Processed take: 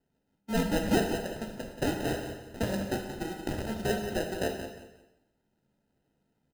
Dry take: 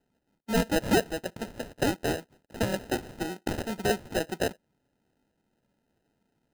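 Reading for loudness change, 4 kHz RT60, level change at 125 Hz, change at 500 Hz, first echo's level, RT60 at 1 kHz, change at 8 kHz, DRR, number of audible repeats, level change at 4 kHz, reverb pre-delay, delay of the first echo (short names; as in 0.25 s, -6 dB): -2.0 dB, 1.0 s, 0.0 dB, -2.0 dB, -9.5 dB, 1.0 s, -3.5 dB, 1.5 dB, 3, -3.0 dB, 6 ms, 0.179 s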